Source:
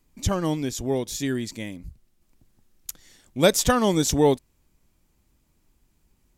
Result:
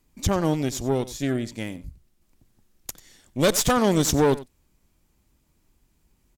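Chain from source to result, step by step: 1.08–1.58 high shelf 2300 Hz -7 dB; tube stage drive 19 dB, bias 0.75; echo 92 ms -17.5 dB; gain +5 dB

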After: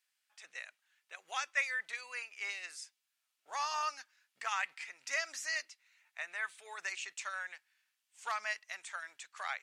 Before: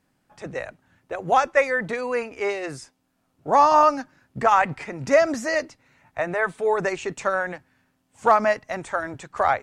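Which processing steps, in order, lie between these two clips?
Chebyshev high-pass 2700 Hz, order 2; gain -4 dB

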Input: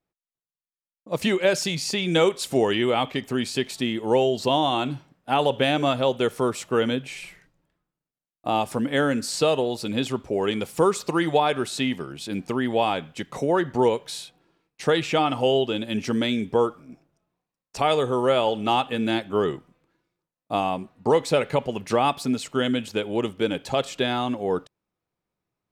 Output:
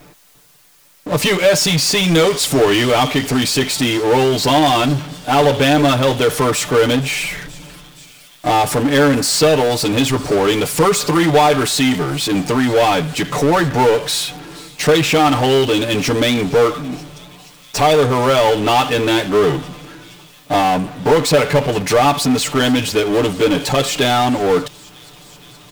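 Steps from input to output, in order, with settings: comb 6.8 ms, depth 86%; power-law curve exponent 0.5; thin delay 0.472 s, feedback 80%, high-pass 3200 Hz, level -19.5 dB

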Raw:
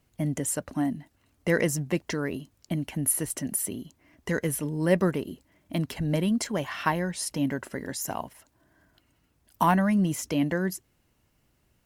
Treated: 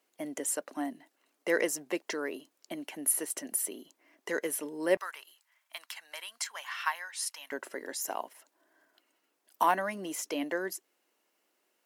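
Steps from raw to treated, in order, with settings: HPF 330 Hz 24 dB/oct, from 4.97 s 1000 Hz, from 7.52 s 340 Hz; gain -2.5 dB

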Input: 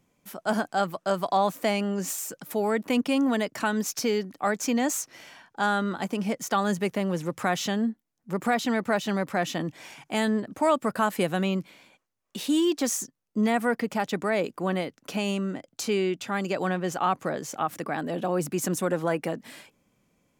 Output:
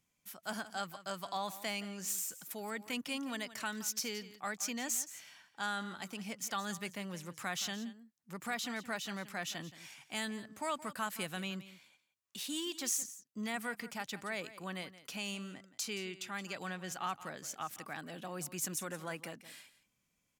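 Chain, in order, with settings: passive tone stack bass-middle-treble 5-5-5; echo 0.172 s -15.5 dB; gain +1.5 dB

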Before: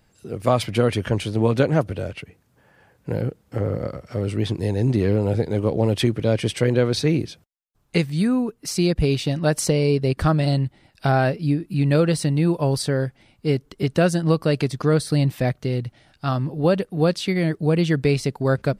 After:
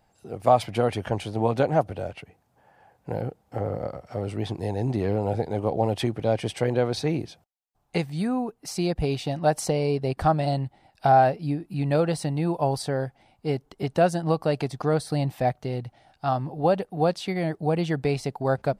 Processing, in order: bell 770 Hz +14 dB 0.67 oct; gain -7 dB

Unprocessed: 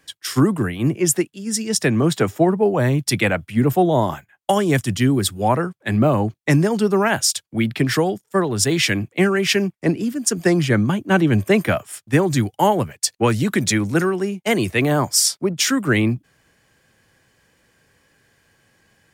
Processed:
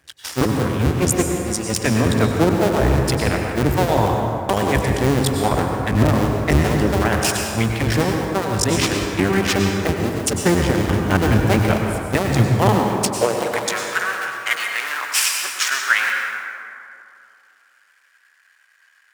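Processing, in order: cycle switcher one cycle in 2, muted; high-pass sweep 62 Hz -> 1500 Hz, 12.05–13.89; plate-style reverb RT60 2.6 s, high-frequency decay 0.45×, pre-delay 85 ms, DRR 1.5 dB

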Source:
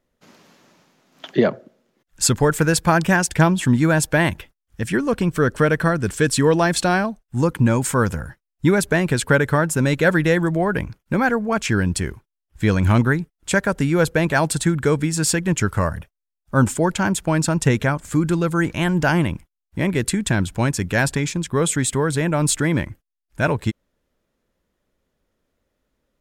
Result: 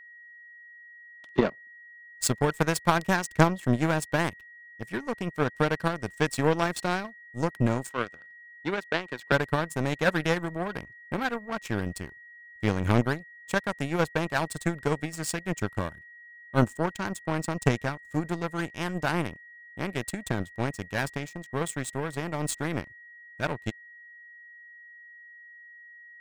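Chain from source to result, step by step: 7.89–9.32 three-band isolator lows -16 dB, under 250 Hz, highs -18 dB, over 5700 Hz; power-law curve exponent 2; whine 1900 Hz -47 dBFS

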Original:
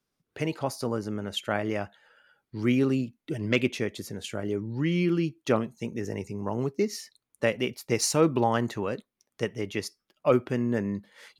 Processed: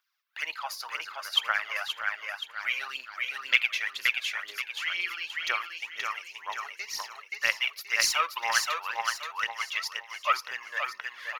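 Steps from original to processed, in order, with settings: HPF 1200 Hz 24 dB/oct; feedback echo 0.527 s, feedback 41%, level -3.5 dB; phaser 2 Hz, delay 2 ms, feedback 57%; bell 8500 Hz -15 dB 0.89 oct; gain +6.5 dB

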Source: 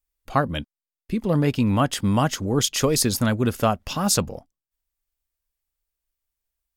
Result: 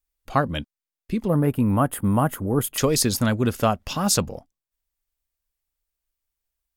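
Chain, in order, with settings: 1.28–2.78 EQ curve 1300 Hz 0 dB, 5800 Hz -23 dB, 10000 Hz +7 dB

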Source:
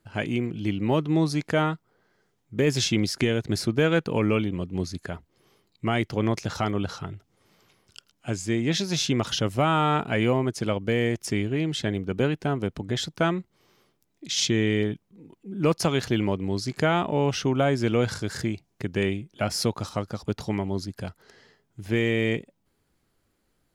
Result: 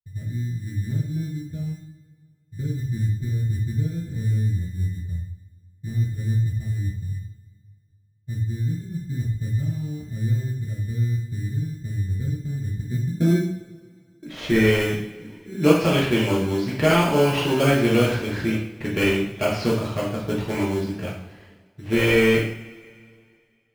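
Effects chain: low-pass sweep 100 Hz -> 2700 Hz, 12.67–14.71; expander -49 dBFS; in parallel at -4 dB: sample-rate reducer 1900 Hz, jitter 0%; on the sum: two-slope reverb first 0.59 s, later 2.4 s, from -21 dB, DRR -6.5 dB; gain -6 dB

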